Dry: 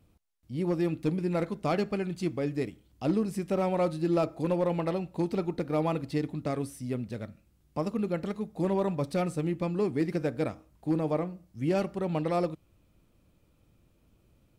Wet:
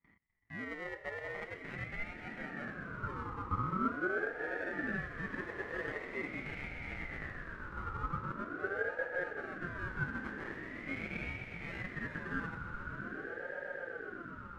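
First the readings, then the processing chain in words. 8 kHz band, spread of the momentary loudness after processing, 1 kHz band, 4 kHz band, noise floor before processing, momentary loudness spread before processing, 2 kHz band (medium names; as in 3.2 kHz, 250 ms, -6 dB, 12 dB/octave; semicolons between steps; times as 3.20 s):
under -15 dB, 7 LU, -5.5 dB, -9.0 dB, -67 dBFS, 7 LU, +8.0 dB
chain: in parallel at +1 dB: peak limiter -26.5 dBFS, peak gain reduction 8 dB; on the sum: peaking EQ 66 Hz +13 dB 1.9 oct; reverse; compression 6:1, threshold -30 dBFS, peak gain reduction 13 dB; reverse; gate with hold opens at -40 dBFS; decimation with a swept rate 38×, swing 60% 0.3 Hz; echo with a slow build-up 126 ms, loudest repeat 8, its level -13 dB; wah-wah 0.2 Hz 560–1200 Hz, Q 8.3; ring modulator with a swept carrier 870 Hz, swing 25%, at 0.44 Hz; trim +10.5 dB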